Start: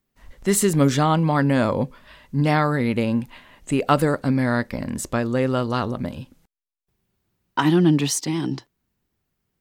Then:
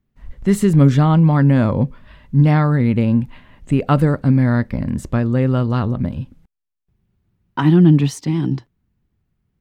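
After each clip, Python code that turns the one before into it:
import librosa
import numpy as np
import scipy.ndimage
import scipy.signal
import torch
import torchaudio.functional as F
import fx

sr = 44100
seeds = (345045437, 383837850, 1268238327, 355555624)

y = fx.bass_treble(x, sr, bass_db=12, treble_db=-9)
y = F.gain(torch.from_numpy(y), -1.0).numpy()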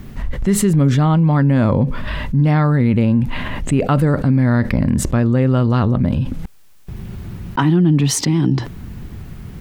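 y = fx.env_flatten(x, sr, amount_pct=70)
y = F.gain(torch.from_numpy(y), -3.5).numpy()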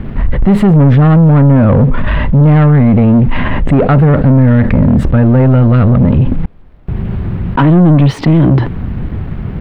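y = fx.leveller(x, sr, passes=3)
y = fx.dmg_noise_colour(y, sr, seeds[0], colour='brown', level_db=-41.0)
y = fx.air_absorb(y, sr, metres=470.0)
y = F.gain(torch.from_numpy(y), 2.0).numpy()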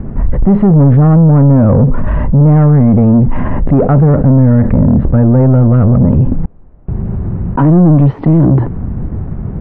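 y = scipy.signal.sosfilt(scipy.signal.butter(2, 1000.0, 'lowpass', fs=sr, output='sos'), x)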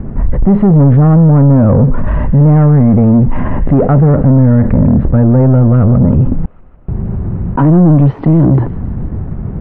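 y = fx.echo_wet_highpass(x, sr, ms=153, feedback_pct=67, hz=1700.0, wet_db=-12.0)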